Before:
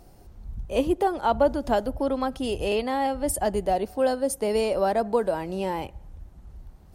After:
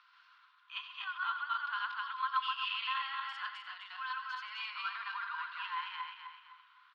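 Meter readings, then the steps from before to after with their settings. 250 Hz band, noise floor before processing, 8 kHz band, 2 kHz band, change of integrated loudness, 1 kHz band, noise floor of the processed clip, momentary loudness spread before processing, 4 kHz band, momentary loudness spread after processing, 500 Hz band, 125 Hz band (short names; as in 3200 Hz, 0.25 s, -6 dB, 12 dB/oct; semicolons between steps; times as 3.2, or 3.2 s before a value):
under -40 dB, -50 dBFS, under -35 dB, +0.5 dB, -12.0 dB, -9.0 dB, -65 dBFS, 6 LU, -1.0 dB, 11 LU, under -40 dB, under -40 dB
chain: regenerating reverse delay 0.128 s, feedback 55%, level 0 dB; inverse Chebyshev low-pass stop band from 11000 Hz, stop band 70 dB; in parallel at +3 dB: compressor, threshold -36 dBFS, peak gain reduction 20 dB; on the sum: limiter -13.5 dBFS, peak gain reduction 7.5 dB; rippled Chebyshev high-pass 1000 Hz, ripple 9 dB; echo 89 ms -13 dB; gain +2.5 dB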